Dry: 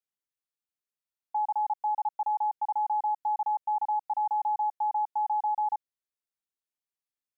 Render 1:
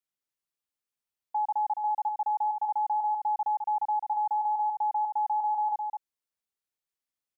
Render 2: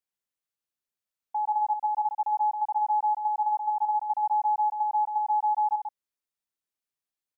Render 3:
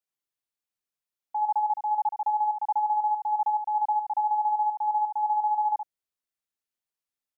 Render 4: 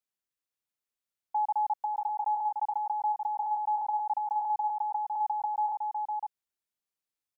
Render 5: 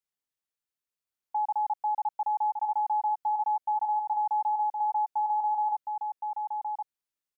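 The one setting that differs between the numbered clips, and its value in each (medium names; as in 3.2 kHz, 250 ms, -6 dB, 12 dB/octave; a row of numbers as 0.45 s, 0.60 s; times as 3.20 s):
delay, time: 211 ms, 130 ms, 72 ms, 507 ms, 1067 ms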